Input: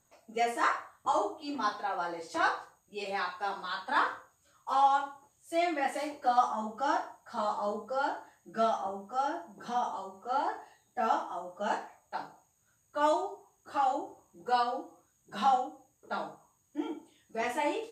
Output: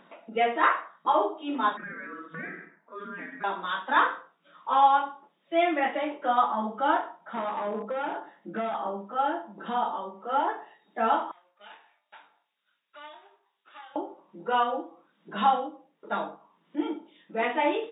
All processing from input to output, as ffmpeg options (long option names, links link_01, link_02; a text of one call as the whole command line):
ffmpeg -i in.wav -filter_complex "[0:a]asettb=1/sr,asplit=3[link_01][link_02][link_03];[link_01]atrim=end=1.774[link_04];[link_02]atrim=start=1.77:end=3.44,asetpts=PTS-STARTPTS,afade=type=in:duration=0.004:curve=qsin,afade=type=out:start_time=1.666:duration=0.004:curve=qsin,highshelf=frequency=1600:width_type=q:width=1.5:gain=-14,acompressor=threshold=-40dB:ratio=3:attack=3.2:release=140:knee=1:detection=peak,aeval=exprs='val(0)*sin(2*PI*810*n/s)':channel_layout=same[link_05];[link_03]atrim=start=3.436[link_06];[link_04][link_05]acrossfade=duration=0.004:curve1=hsin:curve2=qsin[link_07];[link_07][link_06]acrossfade=duration=0.004:curve1=qsin:curve2=hsin,asettb=1/sr,asplit=3[link_08][link_09][link_10];[link_08]atrim=end=7.204[link_11];[link_09]atrim=start=7.2:end=8.75,asetpts=PTS-STARTPTS,afade=type=in:duration=0.004:curve=qsin,afade=type=out:start_time=1.546:duration=0.004:curve=qsin,equalizer=frequency=280:width=0.37:gain=5,acompressor=threshold=-32dB:ratio=4:attack=3.2:release=140:knee=1:detection=peak,aeval=exprs='clip(val(0),-1,0.0178)':channel_layout=same[link_12];[link_10]atrim=start=8.746[link_13];[link_11][link_12]acrossfade=duration=0.004:curve1=hsin:curve2=qsin[link_14];[link_14][link_13]acrossfade=duration=0.004:curve1=qsin:curve2=hsin,asettb=1/sr,asplit=3[link_15][link_16][link_17];[link_15]atrim=end=11.314[link_18];[link_16]atrim=start=11.31:end=13.96,asetpts=PTS-STARTPTS,afade=type=in:duration=0.004:curve=qsin,afade=type=out:start_time=2.646:duration=0.004:curve=qsin,aeval=exprs='if(lt(val(0),0),0.447*val(0),val(0))':channel_layout=same,bandpass=frequency=7900:width_type=q:width=1.7,asplit=2[link_19][link_20];[link_20]adelay=20,volume=-6.5dB[link_21];[link_19][link_21]amix=inputs=2:normalize=0,atrim=end_sample=116865[link_22];[link_17]atrim=start=13.956[link_23];[link_18][link_22]acrossfade=duration=0.004:curve1=hsin:curve2=qsin[link_24];[link_24][link_23]acrossfade=duration=0.004:curve1=qsin:curve2=hsin,acompressor=mode=upward:threshold=-45dB:ratio=2.5,afftfilt=real='re*between(b*sr/4096,160,3800)':imag='im*between(b*sr/4096,160,3800)':win_size=4096:overlap=0.75,bandreject=frequency=760:width=12,volume=6dB" out.wav